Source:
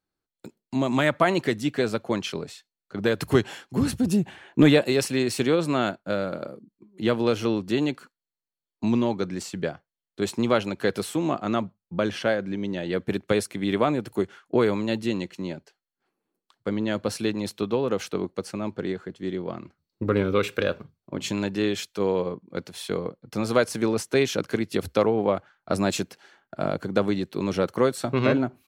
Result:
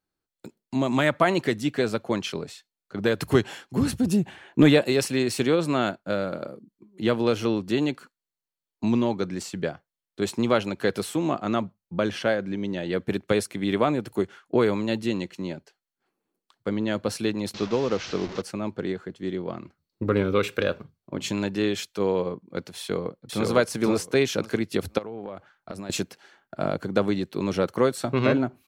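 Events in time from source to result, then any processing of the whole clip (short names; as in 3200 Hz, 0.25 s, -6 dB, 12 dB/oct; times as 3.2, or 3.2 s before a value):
17.54–18.42 delta modulation 32 kbps, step -31 dBFS
22.78–23.47 echo throw 0.51 s, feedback 15%, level -0.5 dB
24.98–25.9 compressor 20:1, threshold -31 dBFS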